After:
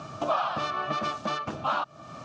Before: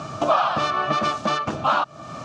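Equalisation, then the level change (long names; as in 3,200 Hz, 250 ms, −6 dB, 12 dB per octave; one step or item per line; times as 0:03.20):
high-frequency loss of the air 75 metres
high-shelf EQ 5,500 Hz +7 dB
−7.5 dB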